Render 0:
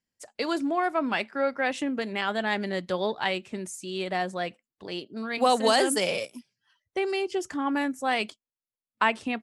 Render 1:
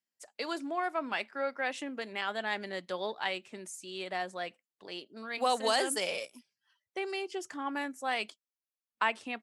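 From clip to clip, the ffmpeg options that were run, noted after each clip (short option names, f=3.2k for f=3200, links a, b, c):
-af "highpass=f=490:p=1,volume=-5dB"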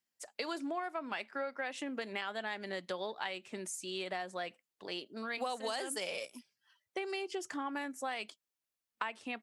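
-af "acompressor=threshold=-38dB:ratio=6,volume=3dB"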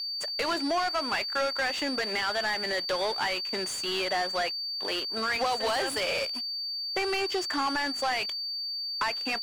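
-filter_complex "[0:a]aeval=exprs='sgn(val(0))*max(abs(val(0))-0.00141,0)':c=same,aeval=exprs='val(0)+0.00562*sin(2*PI*4600*n/s)':c=same,asplit=2[a][b];[b]highpass=f=720:p=1,volume=27dB,asoftclip=type=tanh:threshold=-18dB[c];[a][c]amix=inputs=2:normalize=0,lowpass=f=2.7k:p=1,volume=-6dB"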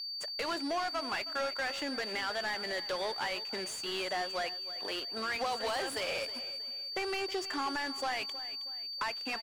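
-af "aecho=1:1:318|636|954:0.178|0.0658|0.0243,volume=-6dB"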